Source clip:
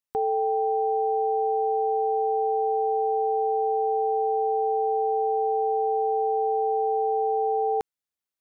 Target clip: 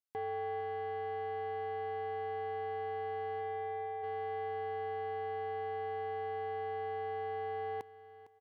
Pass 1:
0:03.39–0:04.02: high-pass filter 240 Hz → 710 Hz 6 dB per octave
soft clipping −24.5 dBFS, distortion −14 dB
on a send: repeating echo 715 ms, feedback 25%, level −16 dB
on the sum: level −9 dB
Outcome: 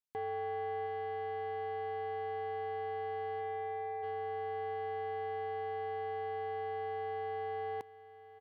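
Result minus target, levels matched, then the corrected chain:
echo 259 ms late
0:03.39–0:04.02: high-pass filter 240 Hz → 710 Hz 6 dB per octave
soft clipping −24.5 dBFS, distortion −14 dB
on a send: repeating echo 456 ms, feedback 25%, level −16 dB
on the sum: level −9 dB

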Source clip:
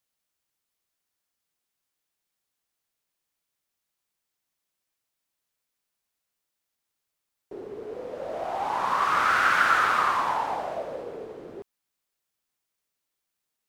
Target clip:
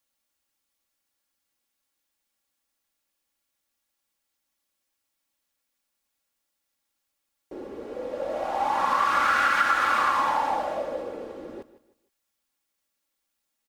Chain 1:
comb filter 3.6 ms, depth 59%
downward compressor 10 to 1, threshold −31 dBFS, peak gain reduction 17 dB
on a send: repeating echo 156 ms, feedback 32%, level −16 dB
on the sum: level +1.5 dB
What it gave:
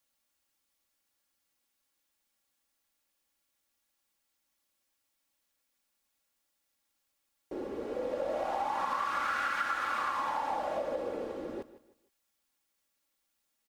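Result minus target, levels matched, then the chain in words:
downward compressor: peak gain reduction +10.5 dB
comb filter 3.6 ms, depth 59%
downward compressor 10 to 1, threshold −19.5 dBFS, peak gain reduction 6.5 dB
on a send: repeating echo 156 ms, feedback 32%, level −16 dB
on the sum: level +1.5 dB

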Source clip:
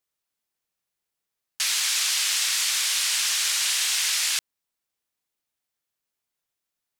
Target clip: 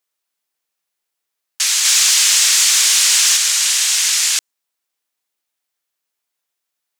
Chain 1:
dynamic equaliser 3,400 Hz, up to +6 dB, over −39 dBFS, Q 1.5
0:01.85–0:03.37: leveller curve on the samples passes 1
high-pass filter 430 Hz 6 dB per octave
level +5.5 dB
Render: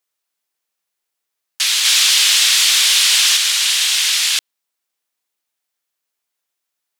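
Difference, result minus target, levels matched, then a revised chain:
8,000 Hz band −3.5 dB
dynamic equaliser 6,900 Hz, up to +6 dB, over −39 dBFS, Q 1.5
0:01.85–0:03.37: leveller curve on the samples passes 1
high-pass filter 430 Hz 6 dB per octave
level +5.5 dB

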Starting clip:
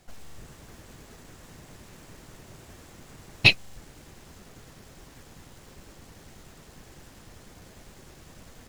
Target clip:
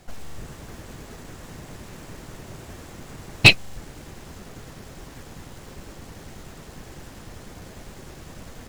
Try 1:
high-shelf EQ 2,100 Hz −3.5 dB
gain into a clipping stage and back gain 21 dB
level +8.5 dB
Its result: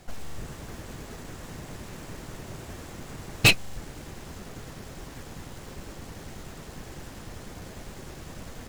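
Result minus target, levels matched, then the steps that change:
gain into a clipping stage and back: distortion +10 dB
change: gain into a clipping stage and back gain 11 dB

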